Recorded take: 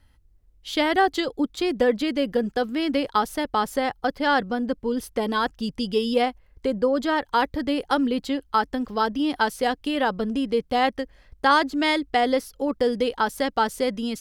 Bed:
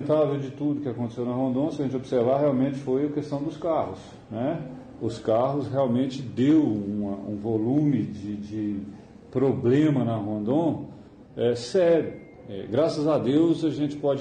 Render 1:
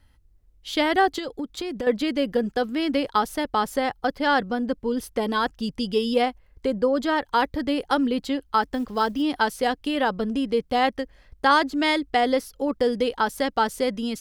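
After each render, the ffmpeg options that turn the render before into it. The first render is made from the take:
ffmpeg -i in.wav -filter_complex "[0:a]asettb=1/sr,asplit=3[link_01][link_02][link_03];[link_01]atrim=end=1.184[link_04];[link_02]atrim=start=1.18:end=1.87,asetpts=PTS-STARTPTS,afade=type=in:duration=0.004:curve=qsin,afade=type=out:start_time=0.686:duration=0.004:curve=qsin,acompressor=threshold=-26dB:ratio=6:attack=3.2:release=140:knee=1:detection=peak[link_05];[link_03]atrim=start=1.866[link_06];[link_04][link_05]acrossfade=duration=0.004:curve1=hsin:curve2=qsin[link_07];[link_07][link_06]acrossfade=duration=0.004:curve1=qsin:curve2=hsin,asettb=1/sr,asplit=3[link_08][link_09][link_10];[link_08]atrim=end=8.624[link_11];[link_09]atrim=start=8.62:end=9.22,asetpts=PTS-STARTPTS,afade=type=in:duration=0.004:curve=qsin,afade=type=out:start_time=0.596:duration=0.004:curve=qsin,acrusher=bits=8:mode=log:mix=0:aa=0.000001[link_12];[link_10]atrim=start=9.216[link_13];[link_11][link_12]acrossfade=duration=0.004:curve1=hsin:curve2=qsin[link_14];[link_14][link_13]acrossfade=duration=0.004:curve1=qsin:curve2=hsin" out.wav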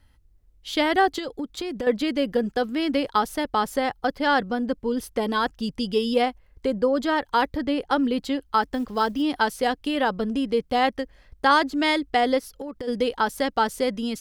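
ffmpeg -i in.wav -filter_complex "[0:a]asettb=1/sr,asplit=3[link_01][link_02][link_03];[link_01]atrim=end=7.574[link_04];[link_02]atrim=start=7.57:end=8.04,asetpts=PTS-STARTPTS,afade=type=in:duration=0.004:curve=qsin,afade=type=out:start_time=0.466:duration=0.004:curve=qsin,highshelf=frequency=5400:gain=-8[link_05];[link_03]atrim=start=8.036[link_06];[link_04][link_05]acrossfade=duration=0.004:curve1=hsin:curve2=qsin[link_07];[link_07][link_06]acrossfade=duration=0.004:curve1=qsin:curve2=hsin,asplit=3[link_08][link_09][link_10];[link_08]afade=type=out:start_time=12.38:duration=0.02[link_11];[link_09]acompressor=threshold=-29dB:ratio=16:attack=3.2:release=140:knee=1:detection=peak,afade=type=in:start_time=12.38:duration=0.02,afade=type=out:start_time=12.87:duration=0.02[link_12];[link_10]afade=type=in:start_time=12.87:duration=0.02[link_13];[link_11][link_12][link_13]amix=inputs=3:normalize=0" out.wav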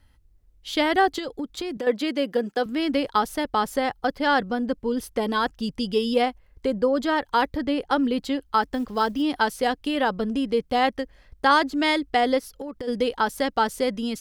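ffmpeg -i in.wav -filter_complex "[0:a]asettb=1/sr,asplit=3[link_01][link_02][link_03];[link_01]atrim=end=1.774[link_04];[link_02]atrim=start=1.77:end=2.66,asetpts=PTS-STARTPTS,afade=type=in:duration=0.004:curve=qsin,afade=type=out:start_time=0.886:duration=0.004:curve=qsin,highpass=240[link_05];[link_03]atrim=start=2.656[link_06];[link_04][link_05]acrossfade=duration=0.004:curve1=hsin:curve2=qsin[link_07];[link_07][link_06]acrossfade=duration=0.004:curve1=qsin:curve2=hsin" out.wav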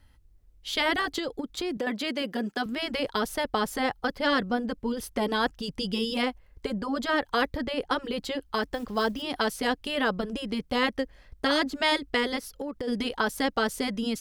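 ffmpeg -i in.wav -af "afftfilt=real='re*lt(hypot(re,im),0.562)':imag='im*lt(hypot(re,im),0.562)':win_size=1024:overlap=0.75" out.wav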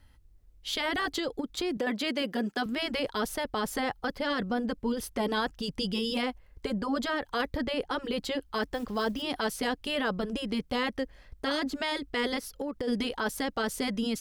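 ffmpeg -i in.wav -af "alimiter=limit=-20.5dB:level=0:latency=1:release=11" out.wav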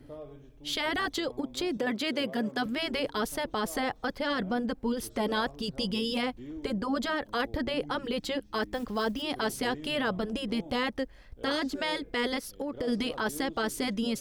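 ffmpeg -i in.wav -i bed.wav -filter_complex "[1:a]volume=-22.5dB[link_01];[0:a][link_01]amix=inputs=2:normalize=0" out.wav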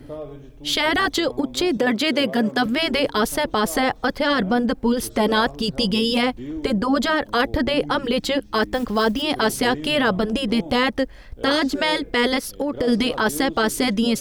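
ffmpeg -i in.wav -af "volume=10.5dB" out.wav

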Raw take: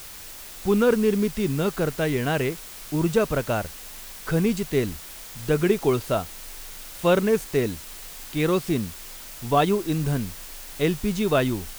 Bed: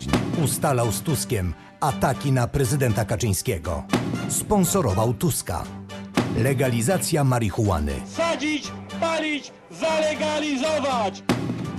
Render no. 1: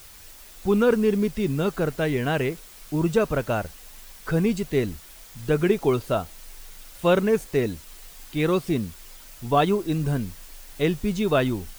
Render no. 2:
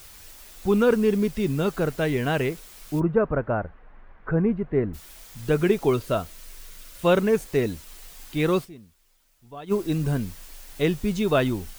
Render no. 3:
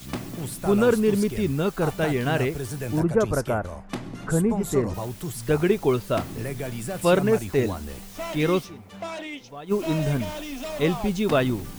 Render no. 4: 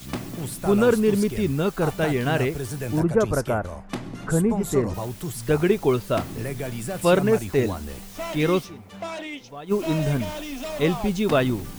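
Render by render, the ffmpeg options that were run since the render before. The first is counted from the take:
ffmpeg -i in.wav -af "afftdn=noise_reduction=7:noise_floor=-41" out.wav
ffmpeg -i in.wav -filter_complex "[0:a]asplit=3[link_01][link_02][link_03];[link_01]afade=type=out:start_time=2.99:duration=0.02[link_04];[link_02]lowpass=frequency=1700:width=0.5412,lowpass=frequency=1700:width=1.3066,afade=type=in:start_time=2.99:duration=0.02,afade=type=out:start_time=4.93:duration=0.02[link_05];[link_03]afade=type=in:start_time=4.93:duration=0.02[link_06];[link_04][link_05][link_06]amix=inputs=3:normalize=0,asettb=1/sr,asplit=3[link_07][link_08][link_09];[link_07]atrim=end=5.914[link_10];[link_08]atrim=start=5.91:end=7.05,asetpts=PTS-STARTPTS,afade=type=in:duration=0.004:curve=qsin,afade=type=out:start_time=1.136:duration=0.004:curve=qsin,bandreject=frequency=810:width=5.4[link_11];[link_09]atrim=start=7.046[link_12];[link_10][link_11]acrossfade=duration=0.004:curve1=hsin:curve2=qsin[link_13];[link_13][link_12]acrossfade=duration=0.004:curve1=qsin:curve2=hsin,asplit=3[link_14][link_15][link_16];[link_14]atrim=end=8.82,asetpts=PTS-STARTPTS,afade=type=out:start_time=8.64:duration=0.18:curve=exp:silence=0.1[link_17];[link_15]atrim=start=8.82:end=9.54,asetpts=PTS-STARTPTS,volume=-20dB[link_18];[link_16]atrim=start=9.54,asetpts=PTS-STARTPTS,afade=type=in:duration=0.18:curve=exp:silence=0.1[link_19];[link_17][link_18][link_19]concat=n=3:v=0:a=1" out.wav
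ffmpeg -i in.wav -i bed.wav -filter_complex "[1:a]volume=-10.5dB[link_01];[0:a][link_01]amix=inputs=2:normalize=0" out.wav
ffmpeg -i in.wav -af "volume=1dB" out.wav

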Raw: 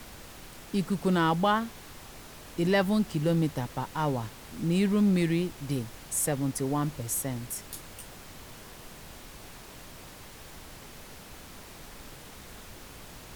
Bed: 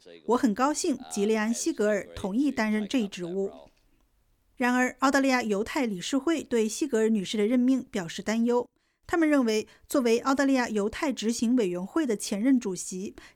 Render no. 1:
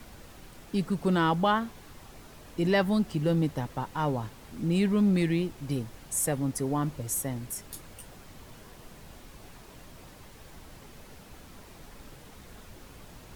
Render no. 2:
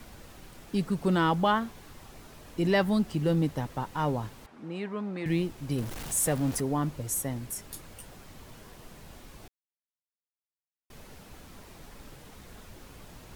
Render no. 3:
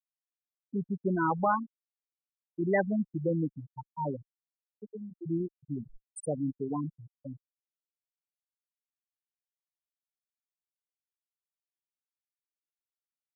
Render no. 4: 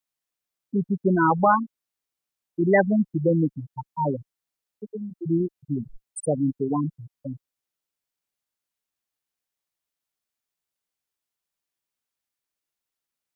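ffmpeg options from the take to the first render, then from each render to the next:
ffmpeg -i in.wav -af "afftdn=noise_reduction=6:noise_floor=-47" out.wav
ffmpeg -i in.wav -filter_complex "[0:a]asettb=1/sr,asplit=3[link_01][link_02][link_03];[link_01]atrim=end=4.464[link_04];[link_02]atrim=start=4.46:end=5.26,asetpts=PTS-STARTPTS,afade=type=in:duration=0.004:curve=qsin,afade=type=out:start_time=0.796:duration=0.004:curve=qsin,bandpass=frequency=990:width_type=q:width=0.87[link_05];[link_03]atrim=start=5.256[link_06];[link_04][link_05]acrossfade=duration=0.004:curve1=hsin:curve2=qsin[link_07];[link_07][link_06]acrossfade=duration=0.004:curve1=qsin:curve2=hsin,asettb=1/sr,asplit=3[link_08][link_09][link_10];[link_08]atrim=end=5.784[link_11];[link_09]atrim=start=5.78:end=6.61,asetpts=PTS-STARTPTS,afade=type=in:duration=0.004:curve=qsin,afade=type=out:start_time=0.826:duration=0.004:curve=qsin,aeval=exprs='val(0)+0.5*0.0178*sgn(val(0))':channel_layout=same[link_12];[link_10]atrim=start=6.606[link_13];[link_11][link_12]acrossfade=duration=0.004:curve1=hsin:curve2=qsin[link_14];[link_14][link_13]acrossfade=duration=0.004:curve1=qsin:curve2=hsin,asplit=3[link_15][link_16][link_17];[link_15]atrim=end=9.48,asetpts=PTS-STARTPTS,afade=type=out:start_time=9.476:duration=0.004:curve=hsin[link_18];[link_16]atrim=start=9.48:end=10.9,asetpts=PTS-STARTPTS,volume=0[link_19];[link_17]atrim=start=10.9,asetpts=PTS-STARTPTS,afade=type=in:duration=0.004:curve=hsin[link_20];[link_18][link_19][link_20]concat=n=3:v=0:a=1" out.wav
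ffmpeg -i in.wav -af "afftfilt=real='re*gte(hypot(re,im),0.2)':imag='im*gte(hypot(re,im),0.2)':win_size=1024:overlap=0.75,equalizer=frequency=61:width_type=o:width=2.3:gain=-13.5" out.wav
ffmpeg -i in.wav -af "volume=8.5dB" out.wav

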